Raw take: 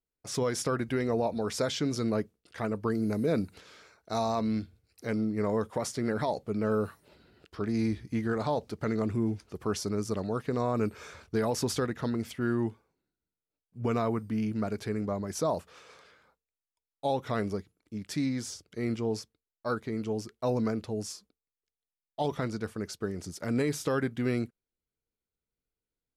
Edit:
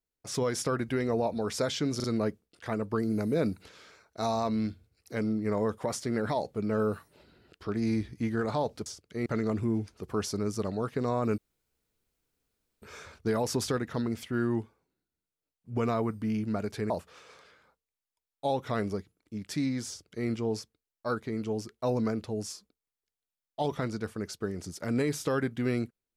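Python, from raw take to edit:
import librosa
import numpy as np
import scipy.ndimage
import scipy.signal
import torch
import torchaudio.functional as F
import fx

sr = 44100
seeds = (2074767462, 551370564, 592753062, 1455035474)

y = fx.edit(x, sr, fx.stutter(start_s=1.96, slice_s=0.04, count=3),
    fx.insert_room_tone(at_s=10.9, length_s=1.44),
    fx.cut(start_s=14.98, length_s=0.52),
    fx.duplicate(start_s=18.48, length_s=0.4, to_s=8.78), tone=tone)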